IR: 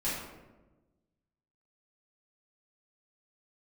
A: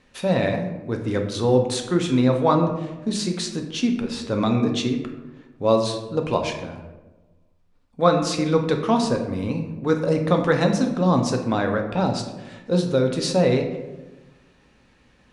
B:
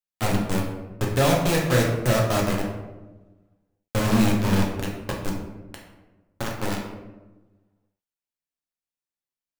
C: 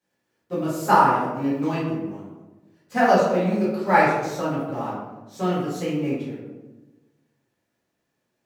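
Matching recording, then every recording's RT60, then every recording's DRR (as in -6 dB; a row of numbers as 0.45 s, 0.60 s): C; 1.2 s, 1.2 s, 1.1 s; 3.0 dB, -2.0 dB, -11.0 dB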